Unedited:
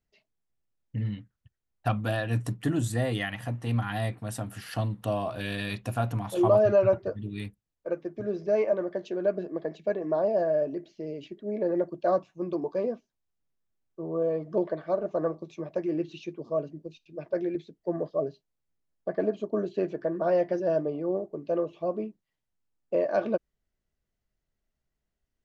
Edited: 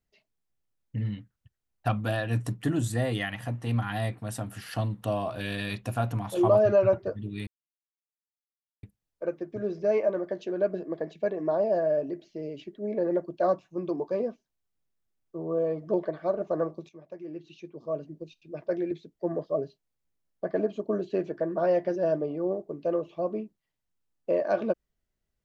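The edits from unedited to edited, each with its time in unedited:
7.47 insert silence 1.36 s
15.53–16.83 fade in quadratic, from -13 dB

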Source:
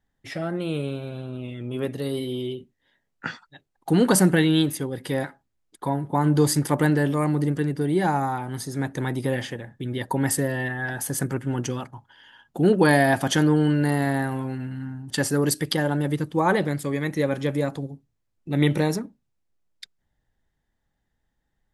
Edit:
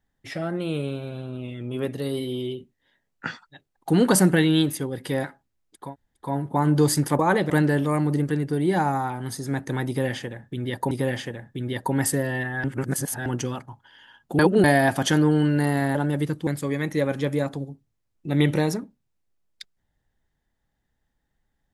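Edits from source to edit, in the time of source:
5.84 insert room tone 0.41 s, crossfade 0.24 s
9.16–10.19 loop, 2 plays
10.89–11.51 reverse
12.64–12.89 reverse
14.2–15.86 cut
16.38–16.69 move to 6.78

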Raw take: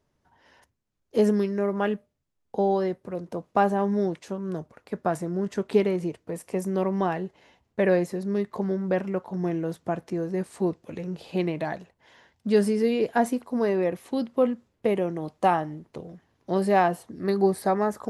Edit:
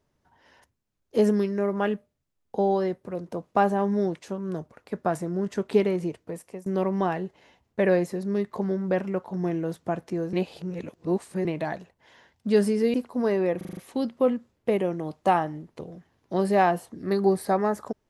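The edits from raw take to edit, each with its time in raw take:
6.22–6.66 fade out linear, to -19.5 dB
10.33–11.45 reverse
12.94–13.31 cut
13.94 stutter 0.04 s, 6 plays

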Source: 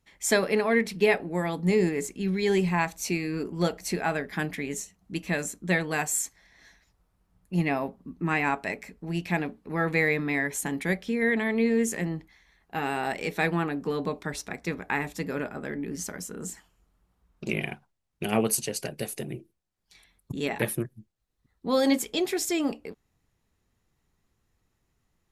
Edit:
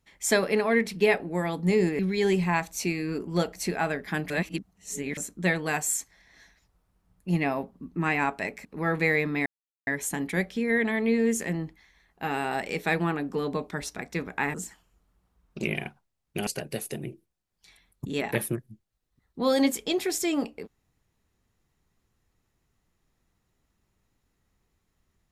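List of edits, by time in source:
1.99–2.24 cut
4.55–5.42 reverse
8.9–9.58 cut
10.39 insert silence 0.41 s
15.06–16.4 cut
18.33–18.74 cut

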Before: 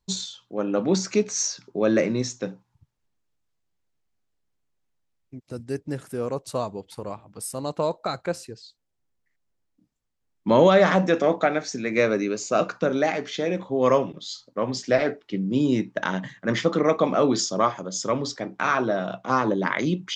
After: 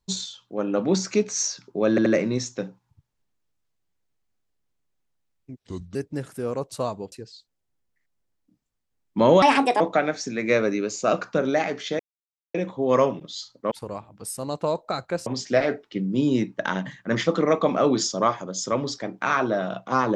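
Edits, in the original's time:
1.9 stutter 0.08 s, 3 plays
5.43–5.7 speed 75%
6.87–8.42 move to 14.64
10.72–11.28 speed 146%
13.47 insert silence 0.55 s

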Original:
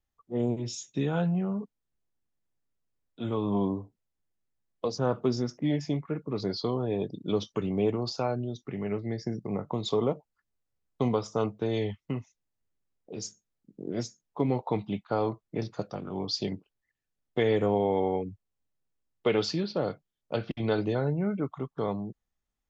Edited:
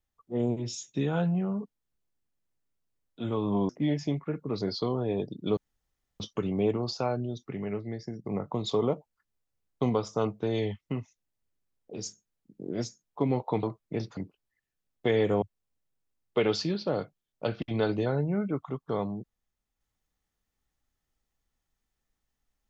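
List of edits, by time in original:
3.69–5.51 cut
7.39 insert room tone 0.63 s
8.64–9.43 fade out, to -7 dB
14.82–15.25 cut
15.79–16.49 cut
17.74–18.31 cut

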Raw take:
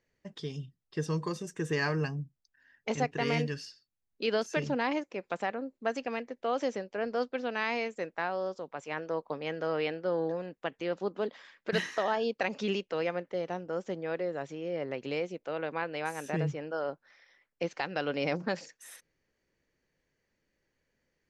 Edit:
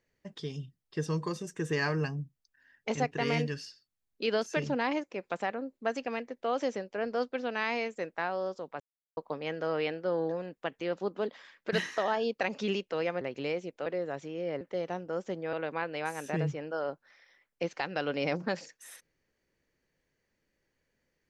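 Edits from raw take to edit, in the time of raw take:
8.8–9.17 mute
13.21–14.13 swap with 14.88–15.53

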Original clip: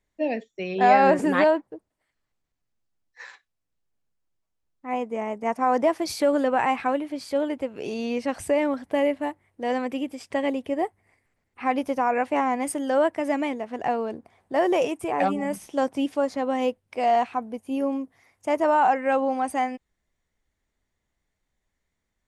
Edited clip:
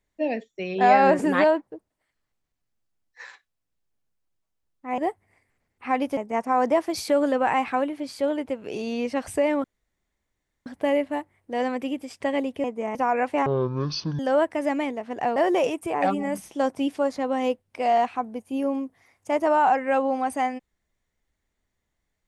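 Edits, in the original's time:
4.98–5.29 swap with 10.74–11.93
8.76 insert room tone 1.02 s
12.44–12.82 speed 52%
13.99–14.54 cut

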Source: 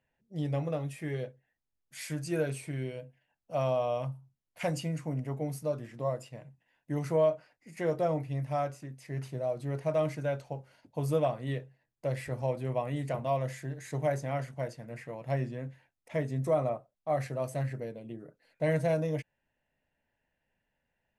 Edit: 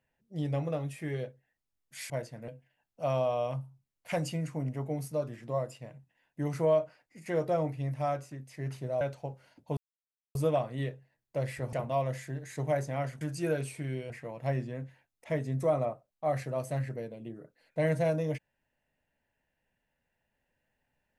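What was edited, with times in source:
2.1–2.99 swap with 14.56–14.94
9.52–10.28 cut
11.04 insert silence 0.58 s
12.42–13.08 cut

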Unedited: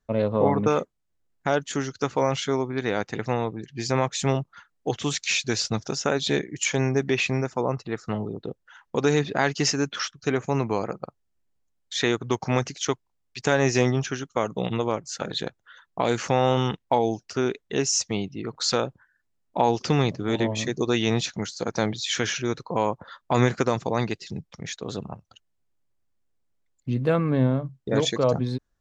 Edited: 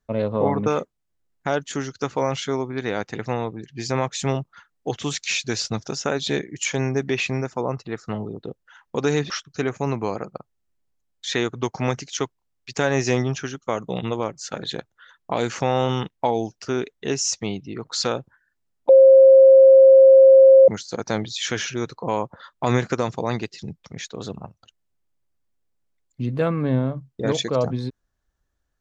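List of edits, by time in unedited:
9.3–9.98 cut
19.57–21.36 bleep 534 Hz -6.5 dBFS

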